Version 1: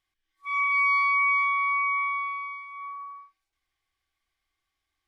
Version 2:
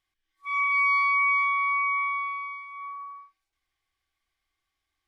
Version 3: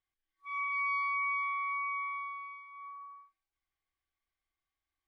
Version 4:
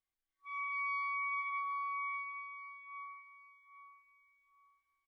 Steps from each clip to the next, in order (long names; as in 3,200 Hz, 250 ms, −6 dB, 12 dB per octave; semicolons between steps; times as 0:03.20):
no processing that can be heard
high-shelf EQ 3,200 Hz −8 dB; level −8 dB
repeating echo 817 ms, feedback 28%, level −9.5 dB; level −4.5 dB